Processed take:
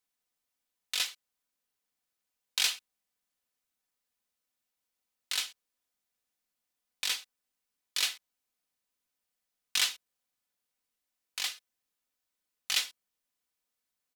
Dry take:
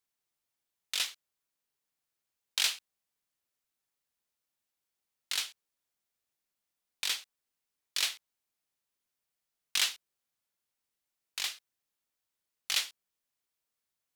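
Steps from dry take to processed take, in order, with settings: comb 4 ms, depth 44%

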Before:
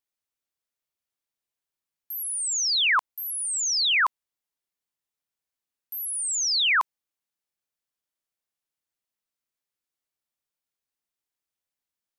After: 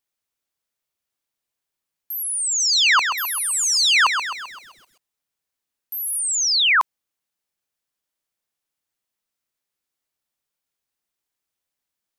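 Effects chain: 2.47–6.19 s: bit-crushed delay 130 ms, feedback 55%, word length 9-bit, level -7 dB; trim +5 dB

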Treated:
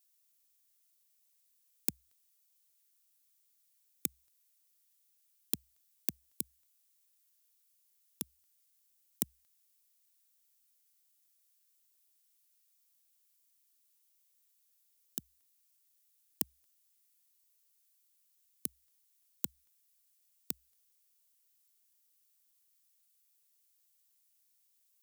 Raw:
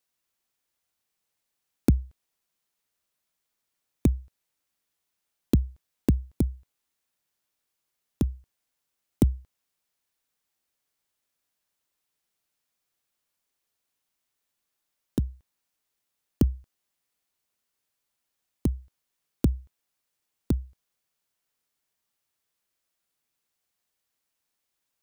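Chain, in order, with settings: high-pass 100 Hz 12 dB/octave; differentiator; trim +5.5 dB

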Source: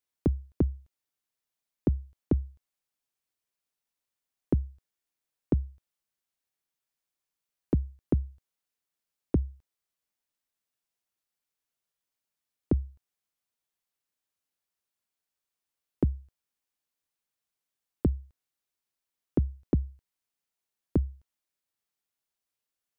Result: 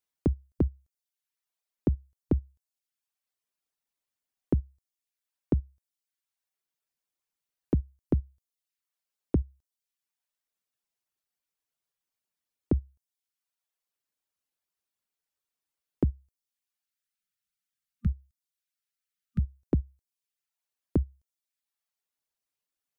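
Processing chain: reverb removal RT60 0.78 s; time-frequency box 16.83–19.58 s, 230–1200 Hz -27 dB

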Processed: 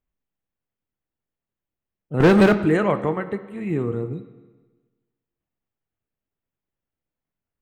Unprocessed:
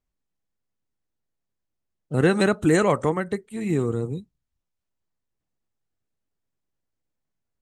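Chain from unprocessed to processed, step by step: high-order bell 6.8 kHz -15.5 dB; 2.20–2.61 s: waveshaping leveller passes 3; on a send: reverberation RT60 1.3 s, pre-delay 14 ms, DRR 11 dB; on the sum: trim -1 dB

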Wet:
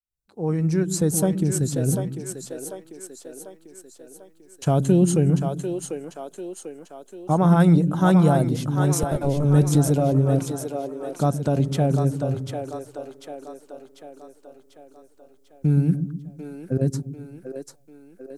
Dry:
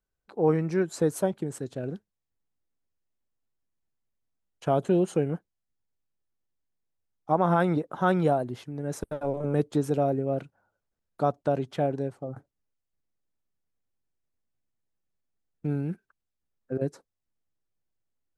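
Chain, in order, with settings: fade-in on the opening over 1.35 s; tone controls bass +12 dB, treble +14 dB; in parallel at 0 dB: peak limiter -19 dBFS, peak gain reduction 11.5 dB; on the sum: two-band feedback delay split 310 Hz, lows 123 ms, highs 744 ms, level -6 dB; trim -2.5 dB

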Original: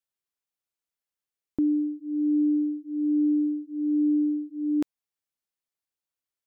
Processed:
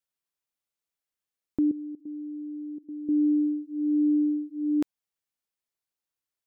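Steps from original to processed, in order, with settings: 1.71–3.09 s: level held to a coarse grid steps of 18 dB

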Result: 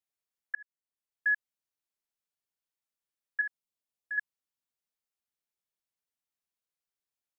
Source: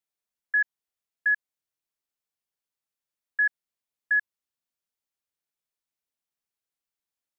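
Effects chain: 0.55–1.28 s: fade in; 3.41–4.18 s: peaking EQ 1.7 kHz -9 dB 0.6 oct; trim -4 dB

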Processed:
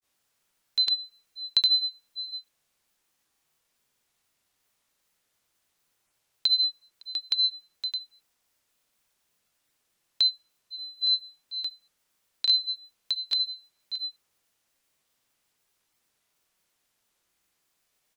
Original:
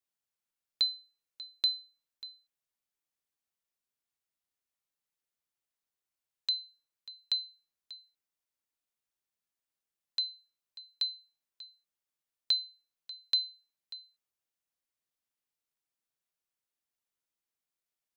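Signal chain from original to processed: in parallel at +2 dB: compressor with a negative ratio -37 dBFS, ratio -0.5; on the sum: granulator 130 ms, grains 20 per s, pitch spread up and down by 0 st; trim +9 dB

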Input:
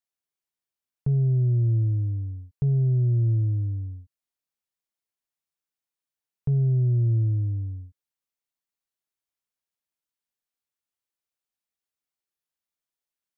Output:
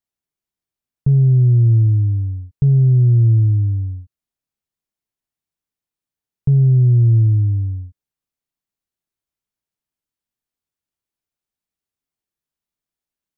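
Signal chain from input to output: bass shelf 400 Hz +10.5 dB; band-stop 520 Hz, Q 15

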